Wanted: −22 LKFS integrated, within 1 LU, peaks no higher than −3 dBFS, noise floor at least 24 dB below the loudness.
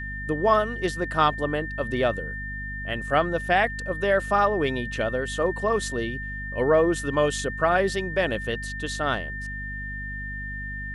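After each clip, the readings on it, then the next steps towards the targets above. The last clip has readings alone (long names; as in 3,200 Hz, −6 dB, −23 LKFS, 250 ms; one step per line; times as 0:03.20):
mains hum 50 Hz; hum harmonics up to 250 Hz; level of the hum −33 dBFS; interfering tone 1,800 Hz; level of the tone −33 dBFS; integrated loudness −25.5 LKFS; sample peak −7.5 dBFS; target loudness −22.0 LKFS
→ hum removal 50 Hz, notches 5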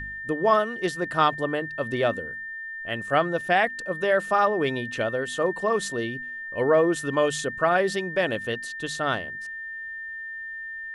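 mains hum none found; interfering tone 1,800 Hz; level of the tone −33 dBFS
→ notch filter 1,800 Hz, Q 30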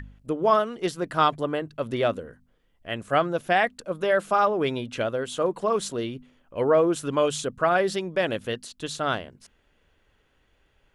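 interfering tone none found; integrated loudness −25.5 LKFS; sample peak −8.0 dBFS; target loudness −22.0 LKFS
→ level +3.5 dB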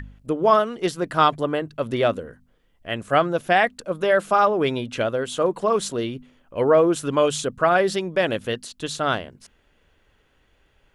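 integrated loudness −22.0 LKFS; sample peak −4.5 dBFS; background noise floor −63 dBFS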